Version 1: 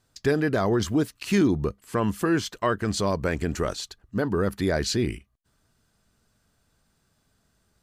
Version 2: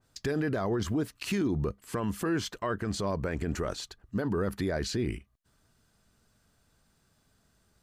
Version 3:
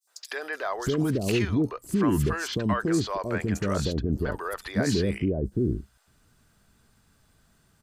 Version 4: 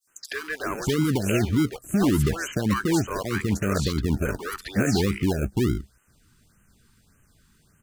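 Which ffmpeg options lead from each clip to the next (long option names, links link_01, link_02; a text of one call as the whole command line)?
ffmpeg -i in.wav -af "alimiter=limit=-21.5dB:level=0:latency=1:release=39,adynamicequalizer=threshold=0.00355:dfrequency=2500:dqfactor=0.7:tfrequency=2500:tqfactor=0.7:attack=5:release=100:ratio=0.375:range=3:mode=cutabove:tftype=highshelf" out.wav
ffmpeg -i in.wav -filter_complex "[0:a]acrossover=split=560|5200[link_01][link_02][link_03];[link_02]adelay=70[link_04];[link_01]adelay=620[link_05];[link_05][link_04][link_03]amix=inputs=3:normalize=0,volume=6dB" out.wav
ffmpeg -i in.wav -filter_complex "[0:a]acrossover=split=310|890|3000[link_01][link_02][link_03][link_04];[link_02]acrusher=samples=35:mix=1:aa=0.000001:lfo=1:lforange=21:lforate=1.7[link_05];[link_01][link_05][link_03][link_04]amix=inputs=4:normalize=0,afftfilt=real='re*(1-between(b*sr/1024,570*pow(4500/570,0.5+0.5*sin(2*PI*1.7*pts/sr))/1.41,570*pow(4500/570,0.5+0.5*sin(2*PI*1.7*pts/sr))*1.41))':imag='im*(1-between(b*sr/1024,570*pow(4500/570,0.5+0.5*sin(2*PI*1.7*pts/sr))/1.41,570*pow(4500/570,0.5+0.5*sin(2*PI*1.7*pts/sr))*1.41))':win_size=1024:overlap=0.75,volume=3dB" out.wav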